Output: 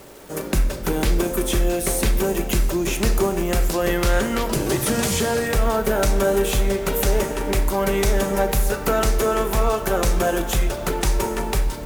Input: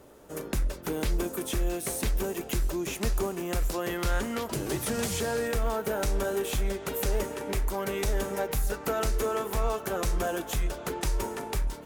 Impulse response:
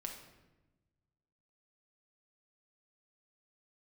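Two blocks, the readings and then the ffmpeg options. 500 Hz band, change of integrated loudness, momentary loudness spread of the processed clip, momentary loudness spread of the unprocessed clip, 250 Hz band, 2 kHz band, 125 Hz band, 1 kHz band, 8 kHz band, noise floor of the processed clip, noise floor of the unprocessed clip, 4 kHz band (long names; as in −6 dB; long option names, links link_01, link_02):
+9.5 dB, +9.0 dB, 3 LU, 3 LU, +10.0 dB, +9.0 dB, +9.0 dB, +9.0 dB, +9.0 dB, −30 dBFS, −42 dBFS, +9.0 dB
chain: -filter_complex "[0:a]acrusher=bits=8:mix=0:aa=0.000001,asplit=2[link_01][link_02];[1:a]atrim=start_sample=2205[link_03];[link_02][link_03]afir=irnorm=-1:irlink=0,volume=3.5dB[link_04];[link_01][link_04]amix=inputs=2:normalize=0,volume=3dB"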